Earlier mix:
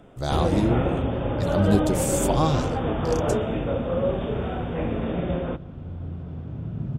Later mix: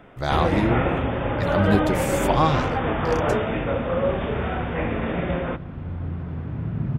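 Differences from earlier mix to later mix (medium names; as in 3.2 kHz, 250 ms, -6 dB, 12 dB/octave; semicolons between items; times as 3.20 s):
second sound +4.0 dB; master: add ten-band graphic EQ 1 kHz +4 dB, 2 kHz +11 dB, 8 kHz -8 dB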